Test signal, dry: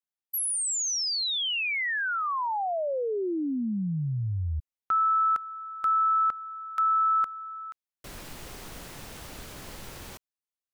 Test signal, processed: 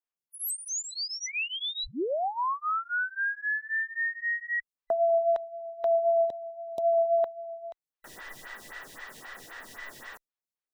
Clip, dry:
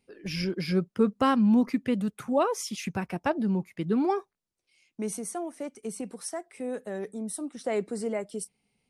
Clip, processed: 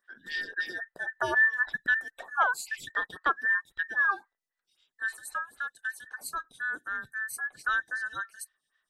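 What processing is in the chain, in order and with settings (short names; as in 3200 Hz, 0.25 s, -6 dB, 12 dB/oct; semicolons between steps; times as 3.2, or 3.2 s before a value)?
band inversion scrambler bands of 2000 Hz; high shelf 7300 Hz -5 dB; photocell phaser 3.8 Hz; gain +1.5 dB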